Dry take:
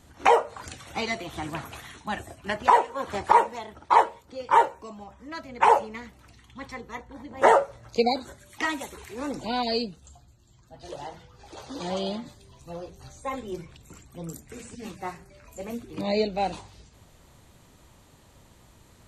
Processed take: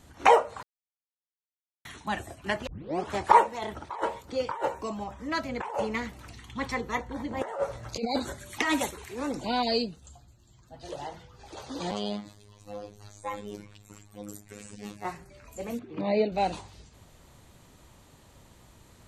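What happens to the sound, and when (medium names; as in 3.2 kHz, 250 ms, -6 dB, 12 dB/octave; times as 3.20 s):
0.63–1.85 s: mute
2.67 s: tape start 0.45 s
3.62–8.91 s: compressor with a negative ratio -30 dBFS
11.91–15.05 s: robot voice 103 Hz
15.79–16.32 s: band-pass 130–2500 Hz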